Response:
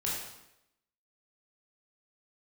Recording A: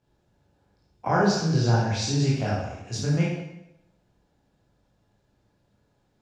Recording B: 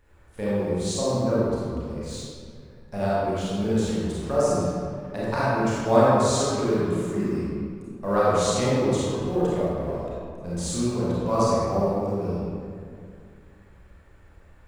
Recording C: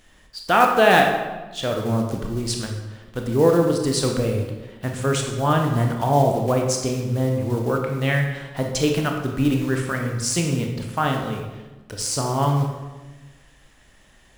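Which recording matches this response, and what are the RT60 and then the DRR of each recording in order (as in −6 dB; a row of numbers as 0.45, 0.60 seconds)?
A; 0.85, 2.2, 1.2 seconds; −6.0, −9.0, 1.5 decibels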